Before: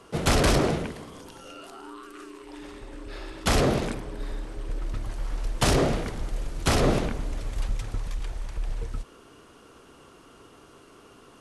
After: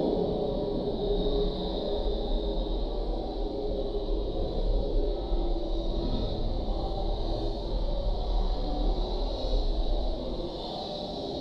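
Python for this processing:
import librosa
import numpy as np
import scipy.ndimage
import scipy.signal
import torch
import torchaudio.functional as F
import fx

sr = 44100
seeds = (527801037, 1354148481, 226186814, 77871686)

y = fx.high_shelf(x, sr, hz=4000.0, db=10.0)
y = fx.room_shoebox(y, sr, seeds[0], volume_m3=2100.0, walls='furnished', distance_m=1.1)
y = fx.over_compress(y, sr, threshold_db=-25.0, ratio=-0.5)
y = fx.curve_eq(y, sr, hz=(110.0, 270.0, 750.0, 1400.0, 2700.0, 3900.0, 6300.0, 10000.0), db=(0, 11, 13, -13, -13, 13, -19, -29))
y = fx.paulstretch(y, sr, seeds[1], factor=6.7, window_s=0.1, from_s=4.03)
y = fx.doubler(y, sr, ms=27.0, db=-12)
y = y * librosa.db_to_amplitude(-4.5)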